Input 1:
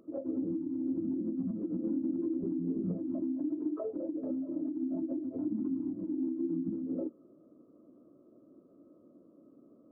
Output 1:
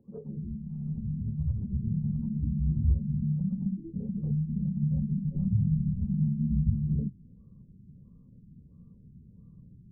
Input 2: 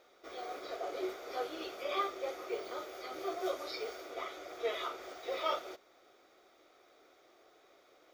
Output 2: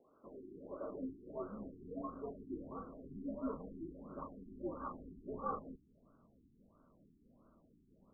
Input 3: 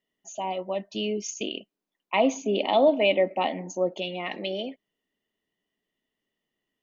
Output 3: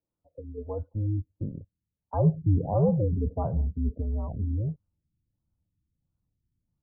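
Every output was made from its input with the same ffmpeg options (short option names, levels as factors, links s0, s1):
-af "afreqshift=-110,asubboost=boost=10.5:cutoff=130,afftfilt=real='re*lt(b*sr/1024,390*pow(1600/390,0.5+0.5*sin(2*PI*1.5*pts/sr)))':imag='im*lt(b*sr/1024,390*pow(1600/390,0.5+0.5*sin(2*PI*1.5*pts/sr)))':win_size=1024:overlap=0.75,volume=0.668"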